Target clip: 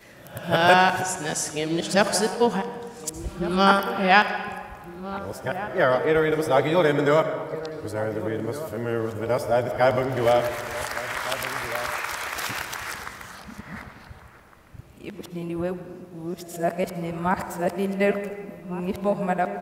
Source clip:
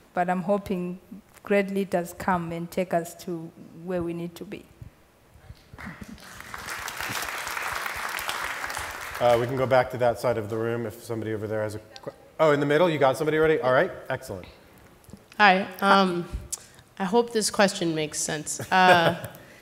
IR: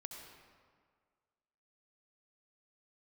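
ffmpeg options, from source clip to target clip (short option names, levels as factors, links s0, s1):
-filter_complex "[0:a]areverse,asplit=2[s0][s1];[s1]adelay=1458,volume=0.224,highshelf=f=4000:g=-32.8[s2];[s0][s2]amix=inputs=2:normalize=0,asplit=2[s3][s4];[1:a]atrim=start_sample=2205[s5];[s4][s5]afir=irnorm=-1:irlink=0,volume=1.33[s6];[s3][s6]amix=inputs=2:normalize=0,volume=0.631"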